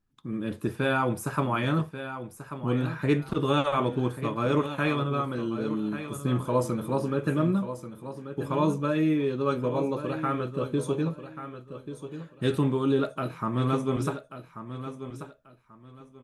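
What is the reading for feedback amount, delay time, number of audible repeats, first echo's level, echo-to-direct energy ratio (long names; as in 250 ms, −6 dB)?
24%, 1,137 ms, 2, −11.0 dB, −10.5 dB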